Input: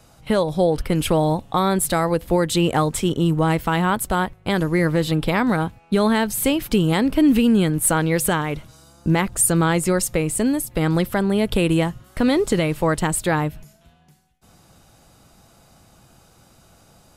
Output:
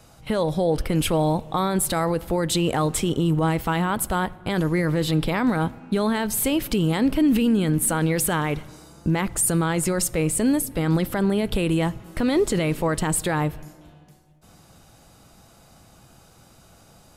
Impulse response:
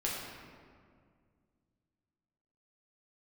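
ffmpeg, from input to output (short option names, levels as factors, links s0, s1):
-filter_complex "[0:a]alimiter=limit=0.211:level=0:latency=1:release=21,asplit=2[s0][s1];[1:a]atrim=start_sample=2205[s2];[s1][s2]afir=irnorm=-1:irlink=0,volume=0.0708[s3];[s0][s3]amix=inputs=2:normalize=0"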